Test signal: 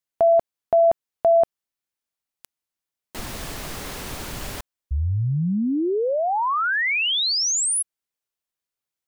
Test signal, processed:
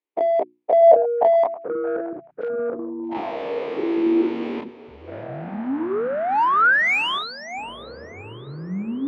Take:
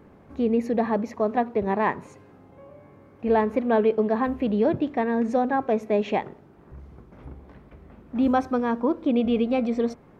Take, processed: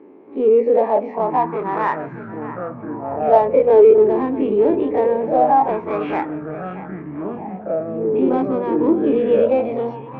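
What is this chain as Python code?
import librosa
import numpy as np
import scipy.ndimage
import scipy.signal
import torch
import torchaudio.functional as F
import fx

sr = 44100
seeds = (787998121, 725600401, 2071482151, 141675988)

p1 = fx.spec_dilate(x, sr, span_ms=60)
p2 = fx.cabinet(p1, sr, low_hz=250.0, low_slope=12, high_hz=3200.0, hz=(270.0, 420.0, 910.0, 1500.0, 2300.0), db=(7, 4, 7, -5, 5))
p3 = fx.hum_notches(p2, sr, base_hz=60, count=6)
p4 = p3 + fx.echo_feedback(p3, sr, ms=626, feedback_pct=44, wet_db=-15.5, dry=0)
p5 = fx.echo_pitch(p4, sr, ms=669, semitones=-6, count=3, db_per_echo=-6.0)
p6 = 10.0 ** (-17.5 / 20.0) * np.tanh(p5 / 10.0 ** (-17.5 / 20.0))
p7 = p5 + (p6 * librosa.db_to_amplitude(-3.0))
p8 = fx.bell_lfo(p7, sr, hz=0.23, low_hz=350.0, high_hz=1500.0, db=15)
y = p8 * librosa.db_to_amplitude(-10.5)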